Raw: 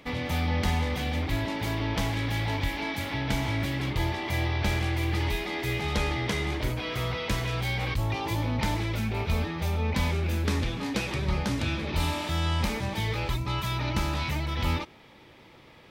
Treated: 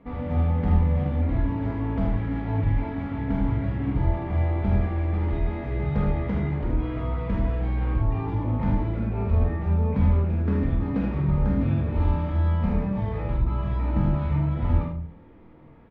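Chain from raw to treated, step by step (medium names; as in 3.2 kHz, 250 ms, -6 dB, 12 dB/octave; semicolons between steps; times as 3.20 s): Chebyshev low-pass 1.3 kHz, order 2; bass shelf 400 Hz +11 dB; early reflections 48 ms -5.5 dB, 77 ms -5 dB; simulated room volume 390 m³, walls furnished, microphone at 1.7 m; trim -8 dB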